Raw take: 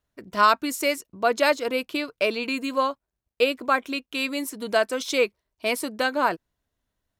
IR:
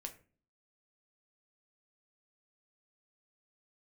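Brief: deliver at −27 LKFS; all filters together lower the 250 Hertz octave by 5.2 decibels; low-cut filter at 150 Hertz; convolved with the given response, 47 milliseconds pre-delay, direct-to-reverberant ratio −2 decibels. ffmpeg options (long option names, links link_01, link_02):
-filter_complex "[0:a]highpass=150,equalizer=frequency=250:width_type=o:gain=-5.5,asplit=2[link_01][link_02];[1:a]atrim=start_sample=2205,adelay=47[link_03];[link_02][link_03]afir=irnorm=-1:irlink=0,volume=5.5dB[link_04];[link_01][link_04]amix=inputs=2:normalize=0,volume=-6dB"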